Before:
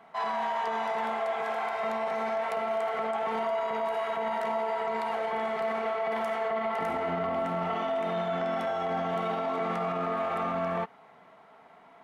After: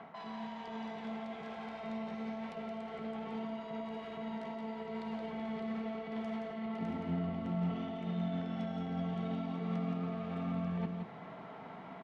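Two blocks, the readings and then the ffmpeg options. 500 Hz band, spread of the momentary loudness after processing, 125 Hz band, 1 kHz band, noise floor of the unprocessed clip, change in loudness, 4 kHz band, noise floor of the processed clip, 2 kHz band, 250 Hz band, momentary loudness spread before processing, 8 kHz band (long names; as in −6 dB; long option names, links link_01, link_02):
−13.5 dB, 7 LU, +3.5 dB, −15.5 dB, −55 dBFS, −9.5 dB, −9.0 dB, −49 dBFS, −14.0 dB, +2.5 dB, 1 LU, can't be measured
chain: -filter_complex "[0:a]areverse,acompressor=threshold=-39dB:ratio=12,areverse,bandreject=frequency=50:width_type=h:width=6,bandreject=frequency=100:width_type=h:width=6,bandreject=frequency=150:width_type=h:width=6,bandreject=frequency=200:width_type=h:width=6,bandreject=frequency=250:width_type=h:width=6,bandreject=frequency=300:width_type=h:width=6,bandreject=frequency=350:width_type=h:width=6,bandreject=frequency=400:width_type=h:width=6,bandreject=frequency=450:width_type=h:width=6,acrossover=split=350|3000[link_01][link_02][link_03];[link_02]acompressor=threshold=-57dB:ratio=6[link_04];[link_01][link_04][link_03]amix=inputs=3:normalize=0,lowpass=3900,equalizer=frequency=170:width_type=o:width=2.3:gain=8.5,asplit=2[link_05][link_06];[link_06]aecho=0:1:172:0.531[link_07];[link_05][link_07]amix=inputs=2:normalize=0,volume=7dB"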